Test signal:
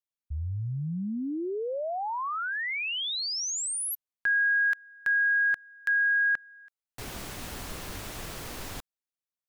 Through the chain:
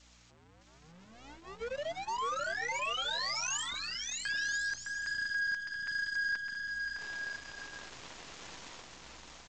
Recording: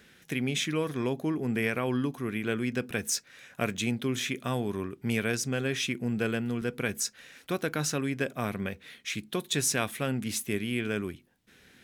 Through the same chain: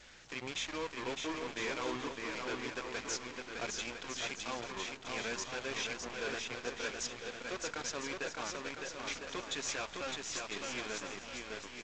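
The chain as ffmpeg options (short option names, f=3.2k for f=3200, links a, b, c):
-af "aeval=exprs='val(0)+0.5*0.0158*sgn(val(0))':c=same,highpass=410,adynamicequalizer=threshold=0.00178:dfrequency=990:dqfactor=6.2:tfrequency=990:tqfactor=6.2:attack=5:release=100:ratio=0.333:range=3:mode=boostabove:tftype=bell,aeval=exprs='val(0)+0.00316*(sin(2*PI*60*n/s)+sin(2*PI*2*60*n/s)/2+sin(2*PI*3*60*n/s)/3+sin(2*PI*4*60*n/s)/4+sin(2*PI*5*60*n/s)/5)':c=same,flanger=delay=3.4:depth=4.4:regen=-19:speed=1.3:shape=sinusoidal,volume=31.5dB,asoftclip=hard,volume=-31.5dB,aeval=exprs='0.0282*(cos(1*acos(clip(val(0)/0.0282,-1,1)))-cos(1*PI/2))+0.0126*(cos(3*acos(clip(val(0)/0.0282,-1,1)))-cos(3*PI/2))+0.000794*(cos(6*acos(clip(val(0)/0.0282,-1,1)))-cos(6*PI/2))+0.00126*(cos(7*acos(clip(val(0)/0.0282,-1,1)))-cos(7*PI/2))':c=same,aecho=1:1:610|1006|1264|1432|1541:0.631|0.398|0.251|0.158|0.1,volume=-3dB" -ar 16000 -c:a g722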